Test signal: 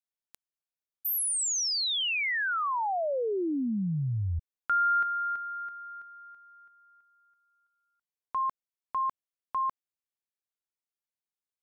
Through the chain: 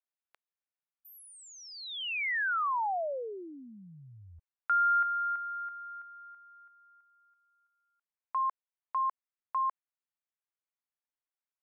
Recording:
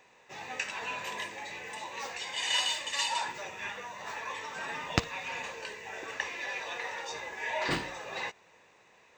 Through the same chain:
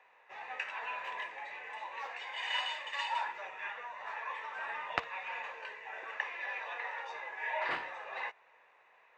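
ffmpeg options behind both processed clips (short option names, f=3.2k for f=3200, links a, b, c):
-filter_complex "[0:a]acrossover=split=560 2700:gain=0.0794 1 0.0631[a][b][c];[a][b][c]amix=inputs=3:normalize=0"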